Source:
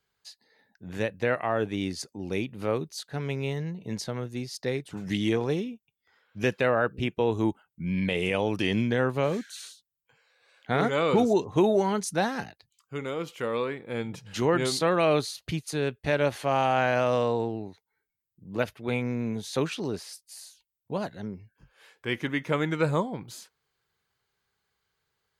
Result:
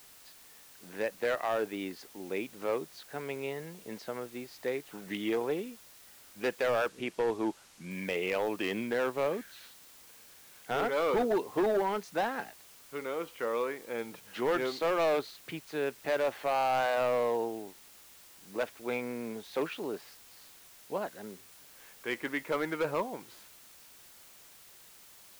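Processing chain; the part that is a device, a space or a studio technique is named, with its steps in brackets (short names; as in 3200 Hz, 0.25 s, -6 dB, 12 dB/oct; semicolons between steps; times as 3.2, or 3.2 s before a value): aircraft radio (BPF 350–2500 Hz; hard clip -22.5 dBFS, distortion -12 dB; white noise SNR 21 dB); 6.88–7.91 LPF 9700 Hz 12 dB/oct; gain -1.5 dB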